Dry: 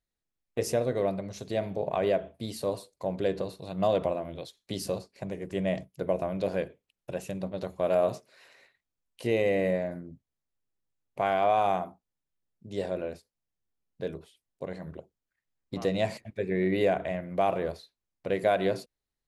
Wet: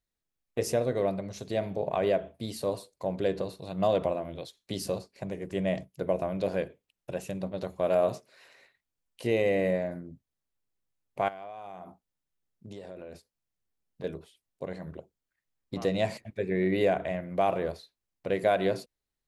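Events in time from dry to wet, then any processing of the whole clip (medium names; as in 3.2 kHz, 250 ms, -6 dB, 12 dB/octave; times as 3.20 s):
11.28–14.04 s: compression 16:1, threshold -38 dBFS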